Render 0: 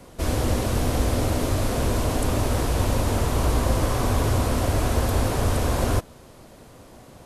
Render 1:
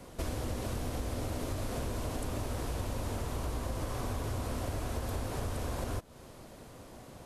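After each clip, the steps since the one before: compression 6:1, threshold -29 dBFS, peak gain reduction 12.5 dB; trim -3.5 dB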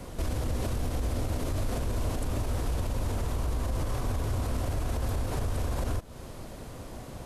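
bass shelf 91 Hz +9 dB; peak limiter -28 dBFS, peak gain reduction 8.5 dB; trim +6 dB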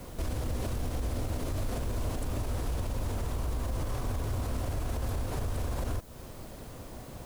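added noise blue -56 dBFS; trim -2.5 dB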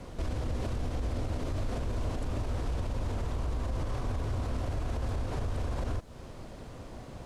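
distance through air 70 m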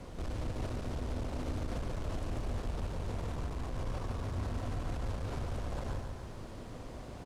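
hard clipper -32 dBFS, distortion -11 dB; feedback delay 143 ms, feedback 59%, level -5 dB; trim -2.5 dB

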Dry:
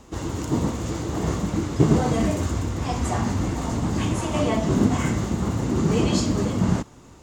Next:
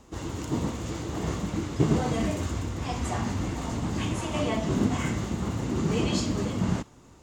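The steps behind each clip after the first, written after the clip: dynamic bell 2.8 kHz, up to +4 dB, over -44 dBFS, Q 1; trim -5.5 dB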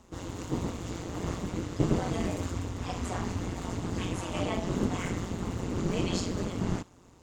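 AM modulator 180 Hz, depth 75%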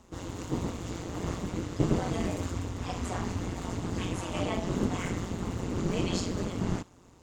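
no audible change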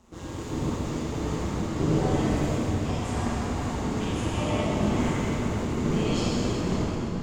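reverberation RT60 4.1 s, pre-delay 20 ms, DRR -7.5 dB; trim -3 dB

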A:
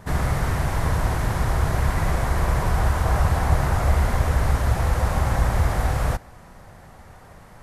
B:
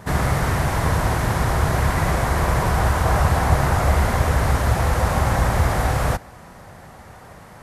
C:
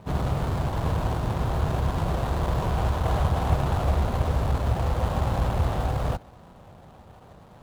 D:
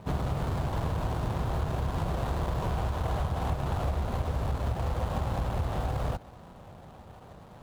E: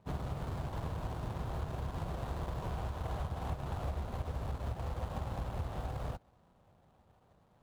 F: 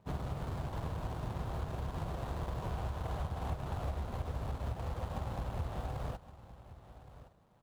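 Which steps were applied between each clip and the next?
high-pass 85 Hz 6 dB/octave; trim +5 dB
median filter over 25 samples; trim -5 dB
compression, threshold -26 dBFS, peak gain reduction 10 dB
upward expansion 1.5:1, over -48 dBFS; trim -6.5 dB
delay 1118 ms -15.5 dB

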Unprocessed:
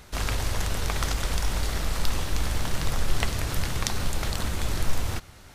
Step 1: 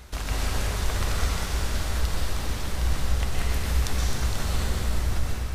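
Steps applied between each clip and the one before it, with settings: peaking EQ 63 Hz +13.5 dB 0.26 oct; compression, threshold -27 dBFS, peak gain reduction 12.5 dB; plate-style reverb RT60 2.6 s, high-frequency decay 0.8×, pre-delay 110 ms, DRR -5 dB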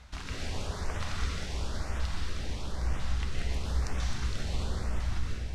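low-pass 6 kHz 12 dB/octave; LFO notch saw up 1 Hz 330–4700 Hz; hum notches 50/100 Hz; trim -5.5 dB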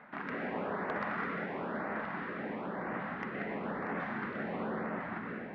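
elliptic band-pass 200–1900 Hz, stop band 60 dB; in parallel at -8.5 dB: sine folder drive 6 dB, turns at -24.5 dBFS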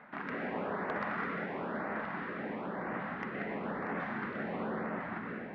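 no audible change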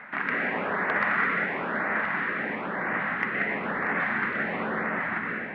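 peaking EQ 2 kHz +12 dB 1.4 oct; trim +4 dB

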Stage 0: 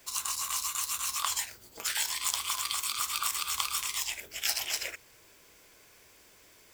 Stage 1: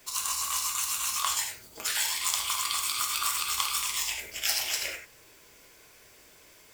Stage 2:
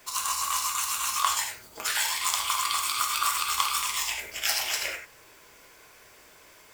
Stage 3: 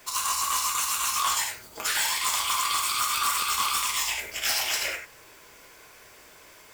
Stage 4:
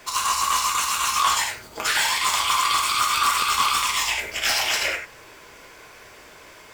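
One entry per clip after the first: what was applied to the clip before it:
gated-style reverb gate 120 ms flat, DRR 2.5 dB; trim +1 dB
peaking EQ 1.1 kHz +6.5 dB 1.9 oct
hard clipper -23 dBFS, distortion -12 dB; trim +2.5 dB
treble shelf 7.4 kHz -11 dB; trim +7 dB

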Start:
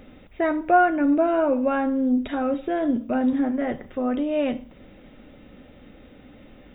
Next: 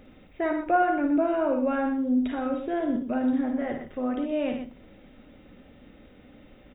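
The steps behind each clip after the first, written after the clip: loudspeakers at several distances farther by 19 m -7 dB, 42 m -9 dB; trim -5 dB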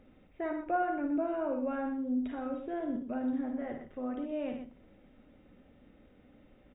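treble shelf 3.2 kHz -9 dB; trim -8 dB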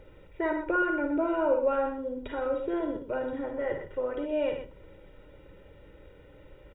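comb 2.1 ms, depth 95%; trim +6 dB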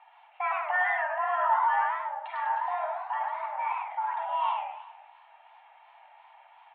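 mistuned SSB +370 Hz 350–2900 Hz; modulated delay 104 ms, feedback 47%, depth 196 cents, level -5 dB

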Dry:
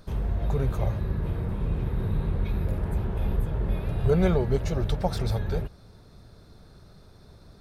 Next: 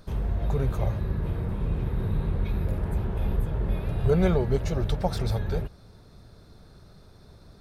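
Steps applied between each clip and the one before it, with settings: no audible change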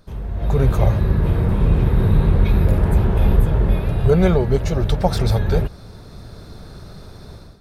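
level rider gain up to 15 dB; trim -1.5 dB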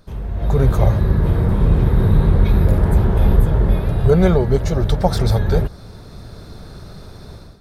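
dynamic bell 2.6 kHz, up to -6 dB, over -54 dBFS, Q 3.5; trim +1.5 dB

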